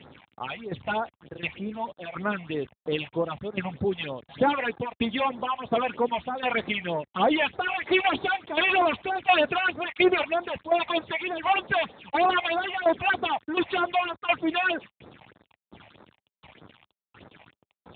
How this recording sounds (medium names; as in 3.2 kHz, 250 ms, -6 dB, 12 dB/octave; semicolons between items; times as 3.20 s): tremolo saw down 1.4 Hz, depth 80%; a quantiser's noise floor 8-bit, dither none; phasing stages 6, 3.2 Hz, lowest notch 350–2900 Hz; AMR-NB